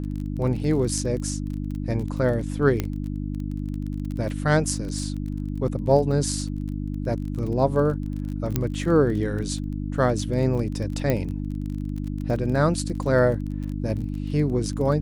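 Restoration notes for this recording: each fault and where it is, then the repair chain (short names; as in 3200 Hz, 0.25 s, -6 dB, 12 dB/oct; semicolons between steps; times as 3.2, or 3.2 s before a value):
crackle 26/s -31 dBFS
hum 50 Hz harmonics 6 -29 dBFS
2.8 pop -11 dBFS
8.56 pop -8 dBFS
11.1 pop -10 dBFS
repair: de-click; de-hum 50 Hz, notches 6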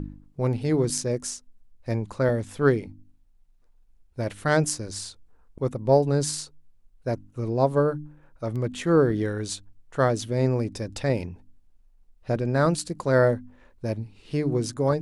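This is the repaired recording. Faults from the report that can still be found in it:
8.56 pop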